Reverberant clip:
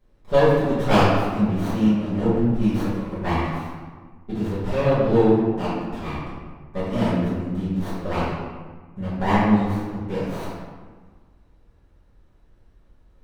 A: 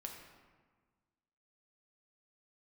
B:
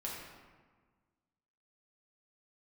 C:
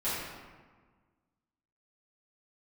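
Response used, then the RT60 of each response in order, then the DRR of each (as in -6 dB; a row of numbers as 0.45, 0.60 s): C; 1.5, 1.5, 1.5 s; 1.0, -5.0, -13.5 dB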